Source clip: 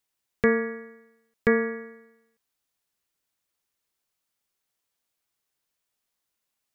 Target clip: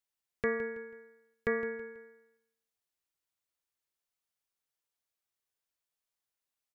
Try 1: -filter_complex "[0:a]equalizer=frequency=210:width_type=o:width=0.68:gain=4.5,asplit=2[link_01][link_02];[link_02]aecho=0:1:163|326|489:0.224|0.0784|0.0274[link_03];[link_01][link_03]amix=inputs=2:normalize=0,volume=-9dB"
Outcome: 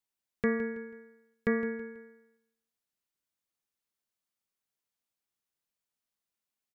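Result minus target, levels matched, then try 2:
250 Hz band +7.0 dB
-filter_complex "[0:a]equalizer=frequency=210:width_type=o:width=0.68:gain=-6,asplit=2[link_01][link_02];[link_02]aecho=0:1:163|326|489:0.224|0.0784|0.0274[link_03];[link_01][link_03]amix=inputs=2:normalize=0,volume=-9dB"

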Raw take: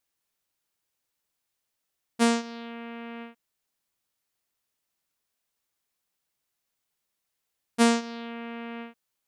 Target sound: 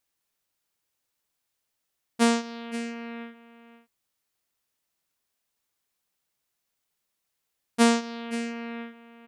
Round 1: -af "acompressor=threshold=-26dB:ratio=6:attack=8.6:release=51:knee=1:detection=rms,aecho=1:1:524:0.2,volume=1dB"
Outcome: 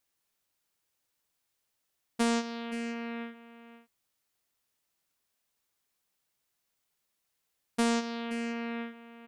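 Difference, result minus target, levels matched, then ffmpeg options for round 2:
downward compressor: peak gain reduction +9.5 dB
-af "aecho=1:1:524:0.2,volume=1dB"

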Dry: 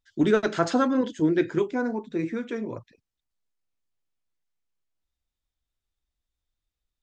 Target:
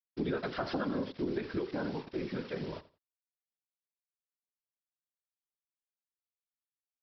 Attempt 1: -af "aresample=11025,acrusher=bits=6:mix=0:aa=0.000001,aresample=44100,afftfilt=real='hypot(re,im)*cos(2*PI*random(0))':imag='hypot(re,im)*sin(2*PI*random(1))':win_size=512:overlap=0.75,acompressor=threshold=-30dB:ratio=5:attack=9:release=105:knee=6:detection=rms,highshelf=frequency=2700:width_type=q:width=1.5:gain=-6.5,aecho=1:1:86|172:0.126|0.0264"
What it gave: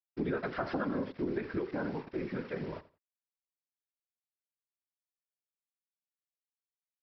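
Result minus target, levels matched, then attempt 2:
4,000 Hz band −7.5 dB
-af "aresample=11025,acrusher=bits=6:mix=0:aa=0.000001,aresample=44100,afftfilt=real='hypot(re,im)*cos(2*PI*random(0))':imag='hypot(re,im)*sin(2*PI*random(1))':win_size=512:overlap=0.75,acompressor=threshold=-30dB:ratio=5:attack=9:release=105:knee=6:detection=rms,aecho=1:1:86|172:0.126|0.0264"

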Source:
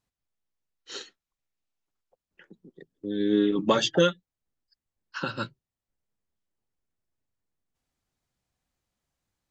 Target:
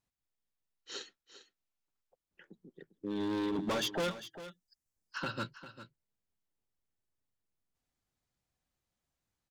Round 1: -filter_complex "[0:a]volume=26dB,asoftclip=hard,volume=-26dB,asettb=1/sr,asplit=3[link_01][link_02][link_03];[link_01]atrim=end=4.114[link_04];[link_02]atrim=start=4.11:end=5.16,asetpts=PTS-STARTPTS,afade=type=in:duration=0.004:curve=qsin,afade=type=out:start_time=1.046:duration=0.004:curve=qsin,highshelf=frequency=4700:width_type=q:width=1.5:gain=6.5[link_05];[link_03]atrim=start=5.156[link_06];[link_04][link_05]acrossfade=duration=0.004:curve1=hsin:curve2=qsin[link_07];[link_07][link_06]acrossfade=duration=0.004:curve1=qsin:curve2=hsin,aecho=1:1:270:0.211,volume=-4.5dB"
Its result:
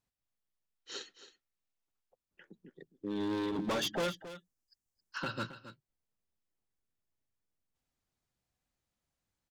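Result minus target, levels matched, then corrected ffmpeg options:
echo 129 ms early
-filter_complex "[0:a]volume=26dB,asoftclip=hard,volume=-26dB,asettb=1/sr,asplit=3[link_01][link_02][link_03];[link_01]atrim=end=4.114[link_04];[link_02]atrim=start=4.11:end=5.16,asetpts=PTS-STARTPTS,afade=type=in:duration=0.004:curve=qsin,afade=type=out:start_time=1.046:duration=0.004:curve=qsin,highshelf=frequency=4700:width_type=q:width=1.5:gain=6.5[link_05];[link_03]atrim=start=5.156[link_06];[link_04][link_05]acrossfade=duration=0.004:curve1=hsin:curve2=qsin[link_07];[link_07][link_06]acrossfade=duration=0.004:curve1=qsin:curve2=hsin,aecho=1:1:399:0.211,volume=-4.5dB"

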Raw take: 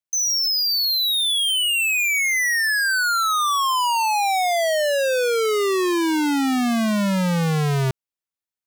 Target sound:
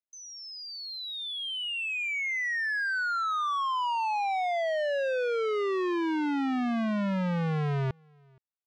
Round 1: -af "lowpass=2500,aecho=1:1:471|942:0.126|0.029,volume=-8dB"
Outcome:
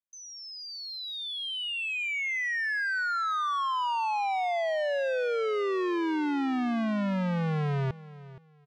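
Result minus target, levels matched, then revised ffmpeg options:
echo-to-direct +12 dB
-af "lowpass=2500,aecho=1:1:471:0.0316,volume=-8dB"

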